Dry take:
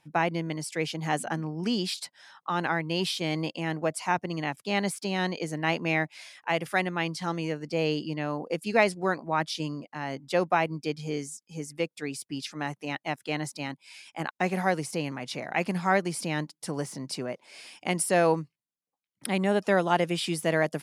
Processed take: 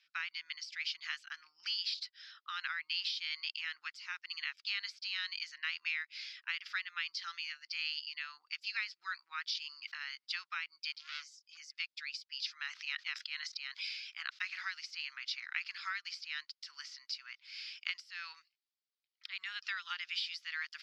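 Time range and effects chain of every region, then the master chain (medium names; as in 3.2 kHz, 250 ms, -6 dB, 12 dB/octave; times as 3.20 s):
9.52–10.03 s: bass shelf 120 Hz +9.5 dB + decay stretcher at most 20 dB/s
10.92–11.57 s: high-pass 150 Hz 24 dB/octave + doubling 27 ms -12.5 dB + transformer saturation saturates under 2.9 kHz
12.61–14.45 s: low-pass 9.1 kHz + resonant low shelf 330 Hz -9.5 dB, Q 3 + decay stretcher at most 37 dB/s
whole clip: differentiator; compression 16:1, threshold -40 dBFS; elliptic band-pass 1.3–4.9 kHz, stop band 40 dB; trim +9 dB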